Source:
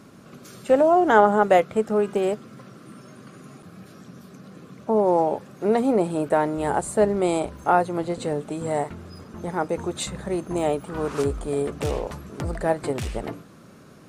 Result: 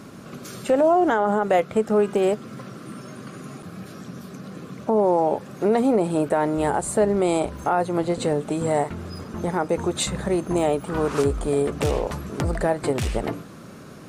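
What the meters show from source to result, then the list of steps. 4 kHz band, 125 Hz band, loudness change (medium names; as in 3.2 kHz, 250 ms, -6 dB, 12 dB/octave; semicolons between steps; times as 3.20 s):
+3.5 dB, +3.5 dB, +0.5 dB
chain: in parallel at +1 dB: compression, threshold -29 dBFS, peak gain reduction 18 dB; on the sum: peak limiter -10.5 dBFS, peak gain reduction 10 dB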